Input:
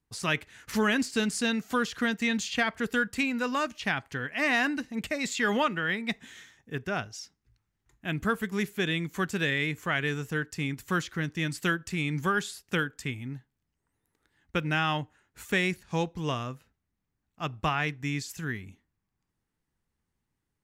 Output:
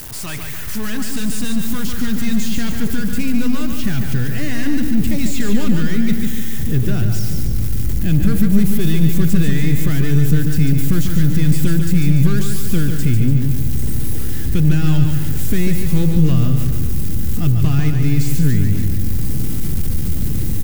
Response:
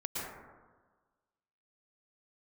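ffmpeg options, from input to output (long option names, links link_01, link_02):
-af "aeval=exprs='val(0)+0.5*0.0211*sgn(val(0))':channel_layout=same,aemphasis=mode=production:type=75fm,aeval=exprs='(tanh(44.7*val(0)+0.6)-tanh(0.6))/44.7':channel_layout=same,asubboost=boost=11.5:cutoff=250,aecho=1:1:145|290|435|580|725|870|1015:0.501|0.266|0.141|0.0746|0.0395|0.021|0.0111,volume=5.5dB"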